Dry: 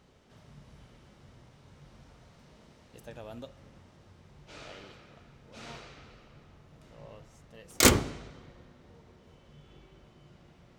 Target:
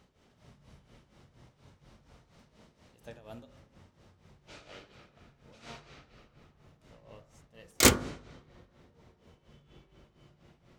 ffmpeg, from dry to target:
-af "tremolo=f=4.2:d=0.78,bandreject=f=49.31:t=h:w=4,bandreject=f=98.62:t=h:w=4,bandreject=f=147.93:t=h:w=4,bandreject=f=197.24:t=h:w=4,bandreject=f=246.55:t=h:w=4,bandreject=f=295.86:t=h:w=4,bandreject=f=345.17:t=h:w=4,bandreject=f=394.48:t=h:w=4,bandreject=f=443.79:t=h:w=4,bandreject=f=493.1:t=h:w=4,bandreject=f=542.41:t=h:w=4,bandreject=f=591.72:t=h:w=4,bandreject=f=641.03:t=h:w=4,bandreject=f=690.34:t=h:w=4,bandreject=f=739.65:t=h:w=4,bandreject=f=788.96:t=h:w=4,bandreject=f=838.27:t=h:w=4,bandreject=f=887.58:t=h:w=4,bandreject=f=936.89:t=h:w=4,bandreject=f=986.2:t=h:w=4,bandreject=f=1035.51:t=h:w=4,bandreject=f=1084.82:t=h:w=4,bandreject=f=1134.13:t=h:w=4,bandreject=f=1183.44:t=h:w=4,bandreject=f=1232.75:t=h:w=4,bandreject=f=1282.06:t=h:w=4,bandreject=f=1331.37:t=h:w=4,bandreject=f=1380.68:t=h:w=4,bandreject=f=1429.99:t=h:w=4,bandreject=f=1479.3:t=h:w=4,bandreject=f=1528.61:t=h:w=4,bandreject=f=1577.92:t=h:w=4,bandreject=f=1627.23:t=h:w=4,bandreject=f=1676.54:t=h:w=4,bandreject=f=1725.85:t=h:w=4,bandreject=f=1775.16:t=h:w=4,bandreject=f=1824.47:t=h:w=4,bandreject=f=1873.78:t=h:w=4"

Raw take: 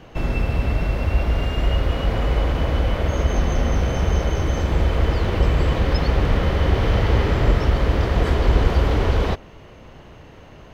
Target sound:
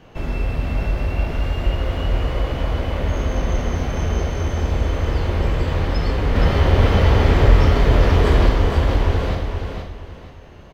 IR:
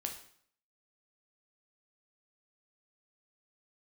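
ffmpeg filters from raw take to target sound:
-filter_complex "[0:a]asettb=1/sr,asplit=3[s0][s1][s2];[s0]atrim=end=6.354[s3];[s1]atrim=start=6.35:end=8.49,asetpts=PTS-STARTPTS,afade=t=in:d=0.004:c=qsin,afade=t=out:st=2.136:d=0.004:c=qsin,acontrast=45[s4];[s2]atrim=start=8.486[s5];[s3][s4]acrossfade=d=0.004:c1=hsin:c2=qsin[s6];[s6][s5]acrossfade=d=0.004:c1=qsin:c2=hsin,aecho=1:1:471|942|1413|1884:0.501|0.14|0.0393|0.011[s7];[1:a]atrim=start_sample=2205[s8];[s7][s8]afir=irnorm=-1:irlink=0,volume=0.794"

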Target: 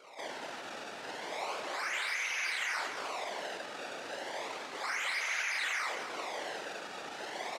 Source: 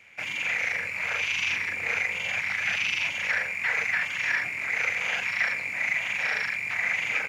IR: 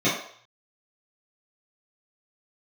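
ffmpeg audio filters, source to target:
-af "equalizer=f=1400:w=0.67:g=4,acrusher=samples=23:mix=1:aa=0.000001:lfo=1:lforange=36.8:lforate=0.34,acontrast=88,asoftclip=type=hard:threshold=0.0422,afftfilt=real='hypot(re,im)*cos(2*PI*random(0))':imag='hypot(re,im)*sin(2*PI*random(1))':win_size=512:overlap=0.75,highpass=730,lowpass=6600,aecho=1:1:84.55|215.7:0.282|0.355,asetrate=42336,aresample=44100"

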